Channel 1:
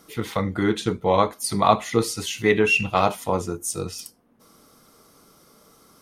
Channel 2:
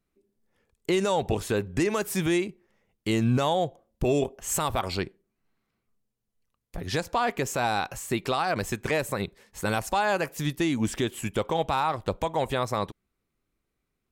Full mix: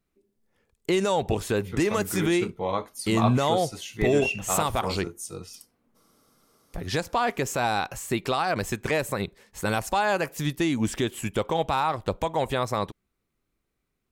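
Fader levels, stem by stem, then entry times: -9.0, +1.0 dB; 1.55, 0.00 s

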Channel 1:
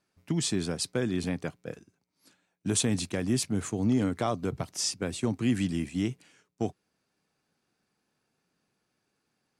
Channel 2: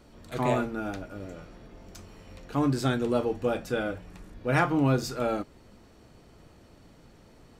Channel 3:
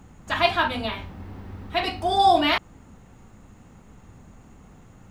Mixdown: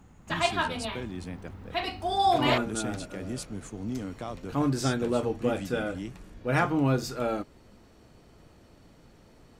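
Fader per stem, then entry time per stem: -8.5, -1.0, -6.0 dB; 0.00, 2.00, 0.00 s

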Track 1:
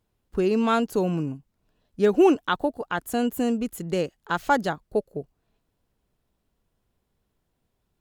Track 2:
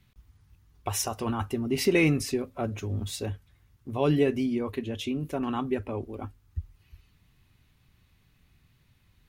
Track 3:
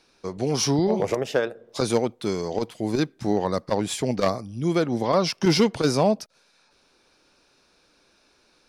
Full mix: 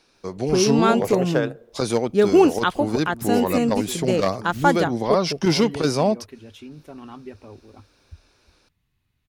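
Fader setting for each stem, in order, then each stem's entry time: +3.0, -9.5, +0.5 dB; 0.15, 1.55, 0.00 s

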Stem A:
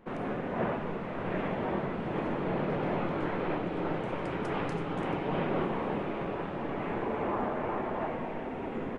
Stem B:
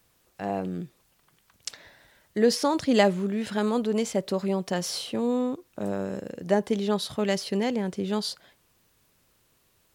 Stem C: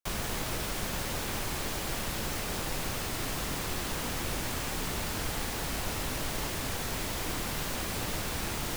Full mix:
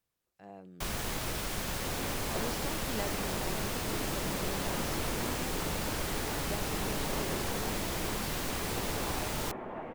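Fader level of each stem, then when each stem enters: -7.5, -19.5, -1.5 dB; 1.75, 0.00, 0.75 s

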